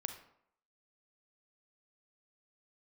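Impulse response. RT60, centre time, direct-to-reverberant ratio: 0.70 s, 15 ms, 6.5 dB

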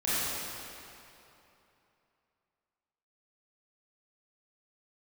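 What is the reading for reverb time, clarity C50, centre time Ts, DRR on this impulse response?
3.0 s, -7.0 dB, 206 ms, -12.0 dB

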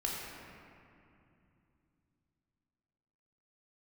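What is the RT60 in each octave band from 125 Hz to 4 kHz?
4.2 s, 3.9 s, 2.8 s, 2.6 s, 2.4 s, 1.5 s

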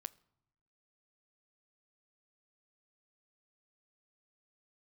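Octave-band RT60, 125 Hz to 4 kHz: 1.1 s, 1.1 s, 0.80 s, 0.85 s, 0.65 s, 0.50 s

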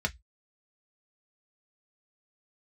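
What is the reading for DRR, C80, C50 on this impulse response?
3.0 dB, 39.5 dB, 26.5 dB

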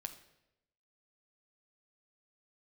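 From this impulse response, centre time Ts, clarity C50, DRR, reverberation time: 10 ms, 11.5 dB, 5.5 dB, 0.90 s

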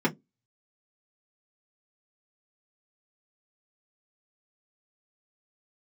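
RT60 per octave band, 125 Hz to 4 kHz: 0.20 s, 0.25 s, 0.20 s, 0.10 s, 0.10 s, 0.10 s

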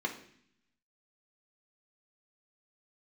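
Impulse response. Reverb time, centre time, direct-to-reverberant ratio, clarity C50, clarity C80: 0.60 s, 15 ms, 0.5 dB, 10.0 dB, 13.5 dB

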